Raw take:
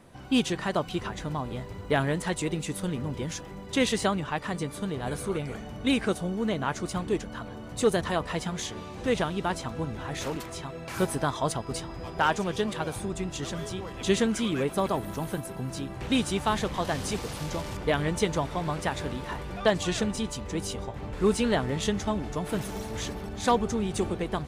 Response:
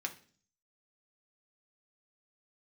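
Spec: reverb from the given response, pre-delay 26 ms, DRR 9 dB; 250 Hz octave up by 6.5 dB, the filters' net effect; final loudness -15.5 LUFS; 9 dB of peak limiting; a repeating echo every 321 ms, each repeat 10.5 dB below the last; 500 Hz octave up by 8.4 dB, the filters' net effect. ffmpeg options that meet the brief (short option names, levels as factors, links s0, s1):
-filter_complex "[0:a]equalizer=f=250:t=o:g=6,equalizer=f=500:t=o:g=8.5,alimiter=limit=0.211:level=0:latency=1,aecho=1:1:321|642|963:0.299|0.0896|0.0269,asplit=2[s0][s1];[1:a]atrim=start_sample=2205,adelay=26[s2];[s1][s2]afir=irnorm=-1:irlink=0,volume=0.299[s3];[s0][s3]amix=inputs=2:normalize=0,volume=3.16"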